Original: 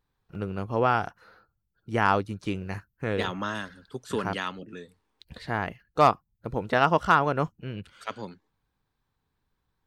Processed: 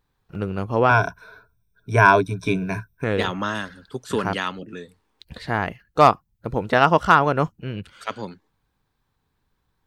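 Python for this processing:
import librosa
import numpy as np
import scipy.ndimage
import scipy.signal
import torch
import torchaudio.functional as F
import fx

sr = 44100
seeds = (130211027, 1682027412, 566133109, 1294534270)

y = fx.ripple_eq(x, sr, per_octave=1.6, db=18, at=(0.89, 3.04))
y = y * 10.0 ** (5.5 / 20.0)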